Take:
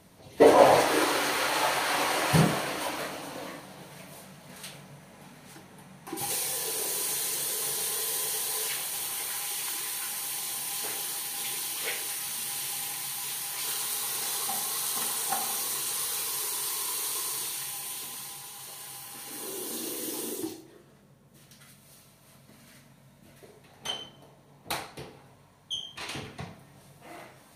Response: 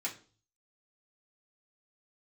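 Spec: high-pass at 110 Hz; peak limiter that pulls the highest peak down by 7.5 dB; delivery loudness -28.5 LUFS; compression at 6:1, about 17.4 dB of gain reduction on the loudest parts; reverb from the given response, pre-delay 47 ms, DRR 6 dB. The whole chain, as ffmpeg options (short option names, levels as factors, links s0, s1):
-filter_complex "[0:a]highpass=110,acompressor=threshold=0.0251:ratio=6,alimiter=level_in=1.5:limit=0.0631:level=0:latency=1,volume=0.668,asplit=2[s0][s1];[1:a]atrim=start_sample=2205,adelay=47[s2];[s1][s2]afir=irnorm=-1:irlink=0,volume=0.376[s3];[s0][s3]amix=inputs=2:normalize=0,volume=2.24"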